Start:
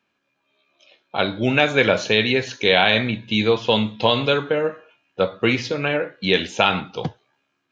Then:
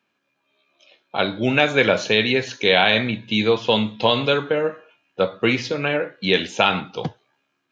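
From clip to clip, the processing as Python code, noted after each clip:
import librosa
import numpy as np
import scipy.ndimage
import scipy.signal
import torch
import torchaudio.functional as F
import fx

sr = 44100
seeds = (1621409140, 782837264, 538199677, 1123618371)

y = scipy.signal.sosfilt(scipy.signal.butter(2, 100.0, 'highpass', fs=sr, output='sos'), x)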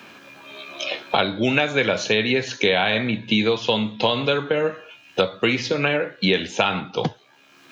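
y = fx.band_squash(x, sr, depth_pct=100)
y = y * 10.0 ** (-2.0 / 20.0)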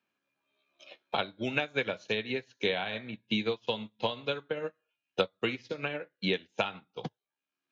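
y = fx.upward_expand(x, sr, threshold_db=-36.0, expansion=2.5)
y = y * 10.0 ** (-7.0 / 20.0)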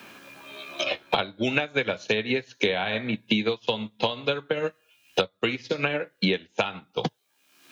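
y = fx.band_squash(x, sr, depth_pct=100)
y = y * 10.0 ** (6.0 / 20.0)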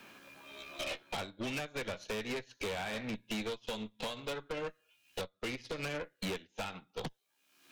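y = fx.tube_stage(x, sr, drive_db=30.0, bias=0.75)
y = y * 10.0 ** (-4.0 / 20.0)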